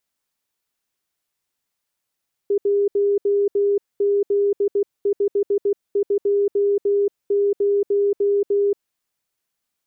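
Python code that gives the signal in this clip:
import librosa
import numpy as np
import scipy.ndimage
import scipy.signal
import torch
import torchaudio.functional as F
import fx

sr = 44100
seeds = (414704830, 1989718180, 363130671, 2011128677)

y = fx.morse(sr, text='1Z520', wpm=16, hz=404.0, level_db=-15.0)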